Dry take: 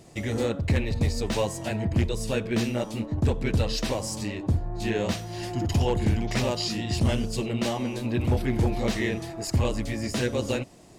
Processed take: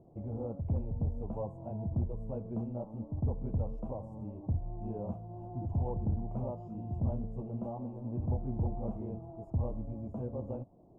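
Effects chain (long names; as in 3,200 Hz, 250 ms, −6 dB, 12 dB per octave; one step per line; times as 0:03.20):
dynamic equaliser 370 Hz, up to −8 dB, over −42 dBFS, Q 1.3
inverse Chebyshev low-pass filter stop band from 1,700 Hz, stop band 40 dB
level −7.5 dB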